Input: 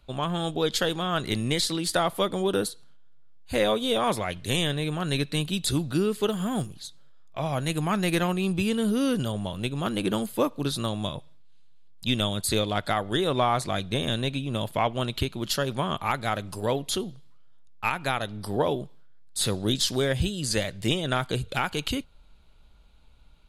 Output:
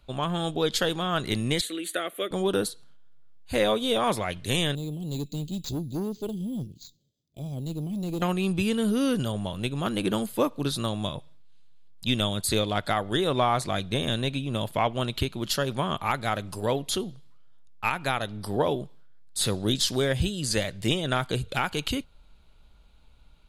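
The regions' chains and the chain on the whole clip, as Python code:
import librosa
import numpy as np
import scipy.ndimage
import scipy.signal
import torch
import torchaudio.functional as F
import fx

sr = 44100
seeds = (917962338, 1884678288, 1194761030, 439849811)

y = fx.chain(x, sr, fx.highpass(hz=290.0, slope=24),
    fx.fixed_phaser(hz=2200.0, stages=4), at=(1.61, 2.31))
y = fx.chain(y, sr, fx.cheby1_bandstop(low_hz=320.0, high_hz=5100.0, order=2),
    fx.tube_stage(drive_db=25.0, bias=0.35),
    fx.resample_bad(factor=4, down='filtered', up='hold'), at=(4.75, 8.22))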